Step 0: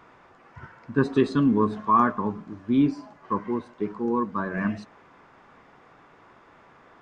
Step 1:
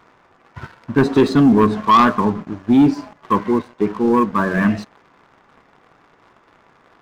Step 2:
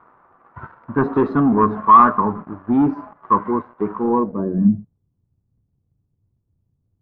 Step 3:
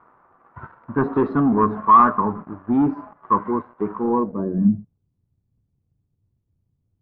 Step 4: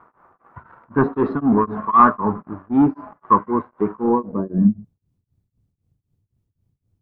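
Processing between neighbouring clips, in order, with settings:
waveshaping leveller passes 2; trim +3.5 dB
low-pass sweep 1.2 kHz -> 100 Hz, 4.03–4.95 s; trim -4.5 dB
distance through air 100 m; trim -2 dB
tremolo of two beating tones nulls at 3.9 Hz; trim +4 dB

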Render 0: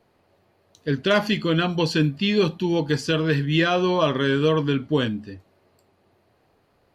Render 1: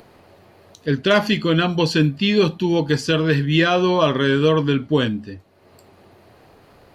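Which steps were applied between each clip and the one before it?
upward compressor, threshold -42 dBFS; trim +3.5 dB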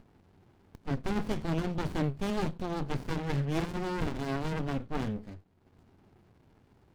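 sliding maximum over 65 samples; trim -9 dB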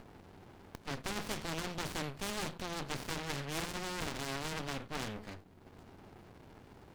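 spectrum-flattening compressor 2:1; trim -3 dB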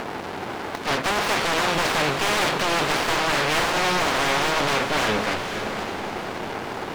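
overdrive pedal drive 30 dB, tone 4 kHz, clips at -19.5 dBFS; echo that smears into a reverb 507 ms, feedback 45%, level -7 dB; trim +7.5 dB

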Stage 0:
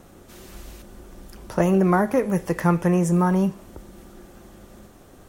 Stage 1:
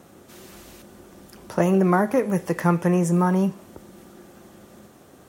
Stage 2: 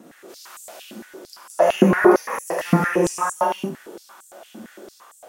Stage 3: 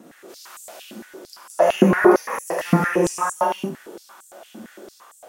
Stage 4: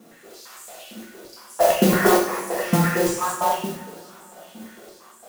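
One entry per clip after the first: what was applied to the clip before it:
high-pass 110 Hz 12 dB/octave
reverberation, pre-delay 3 ms, DRR -5 dB; step-sequenced high-pass 8.8 Hz 240–7800 Hz; trim -2.5 dB
no audible change
modulation noise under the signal 13 dB; two-slope reverb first 0.51 s, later 3.2 s, from -22 dB, DRR -3 dB; trim -5.5 dB

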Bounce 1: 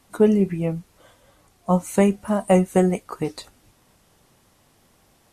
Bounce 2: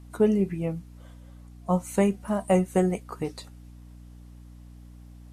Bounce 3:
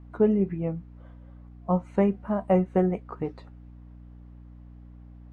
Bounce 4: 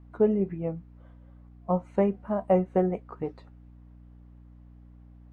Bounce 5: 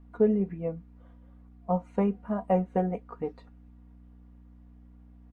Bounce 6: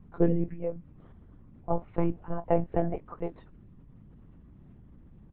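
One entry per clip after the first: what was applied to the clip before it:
hum 60 Hz, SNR 18 dB; trim -5 dB
low-pass 1.7 kHz 12 dB/octave
dynamic bell 590 Hz, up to +5 dB, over -35 dBFS, Q 0.91; trim -4 dB
comb 4.2 ms, depth 54%; trim -2.5 dB
monotone LPC vocoder at 8 kHz 170 Hz

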